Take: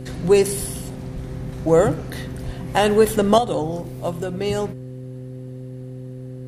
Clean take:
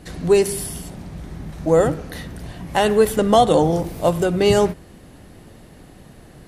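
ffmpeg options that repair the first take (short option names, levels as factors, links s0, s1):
-filter_complex "[0:a]bandreject=f=128.1:t=h:w=4,bandreject=f=256.2:t=h:w=4,bandreject=f=384.3:t=h:w=4,bandreject=f=512.4:t=h:w=4,asplit=3[s0][s1][s2];[s0]afade=t=out:st=0.59:d=0.02[s3];[s1]highpass=f=140:w=0.5412,highpass=f=140:w=1.3066,afade=t=in:st=0.59:d=0.02,afade=t=out:st=0.71:d=0.02[s4];[s2]afade=t=in:st=0.71:d=0.02[s5];[s3][s4][s5]amix=inputs=3:normalize=0,asplit=3[s6][s7][s8];[s6]afade=t=out:st=1.13:d=0.02[s9];[s7]highpass=f=140:w=0.5412,highpass=f=140:w=1.3066,afade=t=in:st=1.13:d=0.02,afade=t=out:st=1.25:d=0.02[s10];[s8]afade=t=in:st=1.25:d=0.02[s11];[s9][s10][s11]amix=inputs=3:normalize=0,asplit=3[s12][s13][s14];[s12]afade=t=out:st=2.45:d=0.02[s15];[s13]highpass=f=140:w=0.5412,highpass=f=140:w=1.3066,afade=t=in:st=2.45:d=0.02,afade=t=out:st=2.57:d=0.02[s16];[s14]afade=t=in:st=2.57:d=0.02[s17];[s15][s16][s17]amix=inputs=3:normalize=0,asetnsamples=n=441:p=0,asendcmd='3.38 volume volume 8dB',volume=1"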